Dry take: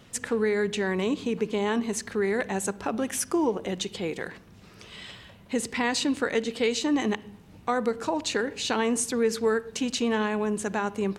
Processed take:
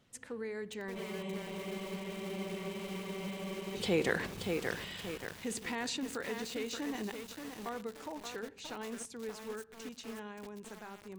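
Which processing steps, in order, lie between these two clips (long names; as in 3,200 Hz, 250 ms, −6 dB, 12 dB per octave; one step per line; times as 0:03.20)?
source passing by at 0:04.10, 10 m/s, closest 2.1 metres
in parallel at −2 dB: compressor whose output falls as the input rises −47 dBFS, ratio −1
on the sum: frozen spectrum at 0:00.98, 2.77 s
feedback echo at a low word length 578 ms, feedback 55%, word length 8 bits, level −4 dB
level +2.5 dB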